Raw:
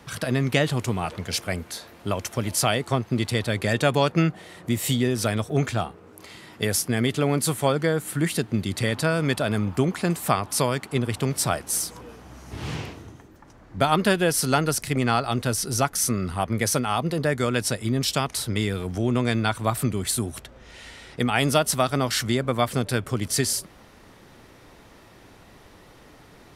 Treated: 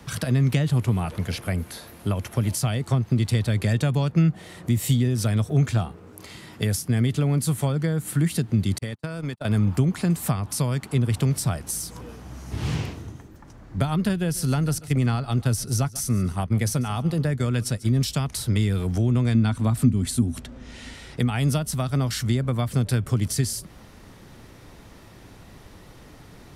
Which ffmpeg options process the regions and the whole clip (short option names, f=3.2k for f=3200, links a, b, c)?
-filter_complex "[0:a]asettb=1/sr,asplit=3[a][b][c];[a]atrim=end=0.714[d];[b]atrim=start=0.71:end=2.47,asetpts=PTS-STARTPTS,afade=t=in:d=0.004:c=qsin,afade=t=out:st=1.756:d=0.004:c=qsin,acrossover=split=3500[e][f];[f]acompressor=threshold=-47dB:ratio=4:attack=1:release=60[g];[e][g]amix=inputs=2:normalize=0,equalizer=f=11k:w=2.6:g=12[h];[c]atrim=start=2.466[i];[d][h]acrossfade=d=0.004:c1=hsin:c2=qsin[j];[j][i]acrossfade=d=0.004:c1=qsin:c2=hsin,asettb=1/sr,asplit=3[k][l][m];[k]atrim=end=8.784[n];[l]atrim=start=8.78:end=9.45,asetpts=PTS-STARTPTS,afade=t=in:d=0.004:c=qsin,afade=t=out:st=0.666:d=0.004:c=qsin,highpass=58,agate=range=-50dB:threshold=-24dB:ratio=16:release=100:detection=peak,acompressor=threshold=-29dB:ratio=8:attack=3.2:release=140:knee=1:detection=peak[o];[m]atrim=start=9.446[p];[n][o]acrossfade=d=0.004:c1=hsin:c2=qsin[q];[q][p]acrossfade=d=0.004:c1=qsin:c2=hsin,asettb=1/sr,asplit=3[r][s][t];[r]atrim=end=14.094[u];[s]atrim=start=14.09:end=18.03,asetpts=PTS-STARTPTS,afade=t=in:d=0.004:c=qsin,afade=t=out:st=3.936:d=0.004:c=qsin,agate=range=-33dB:threshold=-27dB:ratio=3:release=100:detection=peak,aecho=1:1:141|282:0.0891|0.025,atrim=end_sample=173754[v];[t]atrim=start=18.026[w];[u][v]acrossfade=d=0.004:c1=hsin:c2=qsin[x];[x][w]acrossfade=d=0.004:c1=qsin:c2=hsin,asettb=1/sr,asplit=3[y][z][aa];[y]atrim=end=19.344[ab];[z]atrim=start=19.34:end=20.94,asetpts=PTS-STARTPTS,afade=t=in:d=0.004:c=qsin,afade=t=out:st=1.596:d=0.004:c=qsin,lowpass=11k,equalizer=f=250:w=4.1:g=12.5[ac];[aa]atrim=start=20.936[ad];[ab][ac]acrossfade=d=0.004:c1=hsin:c2=qsin[ae];[ae][ad]acrossfade=d=0.004:c1=qsin:c2=hsin,bass=f=250:g=7,treble=f=4k:g=3,acrossover=split=200[af][ag];[ag]acompressor=threshold=-27dB:ratio=6[ah];[af][ah]amix=inputs=2:normalize=0"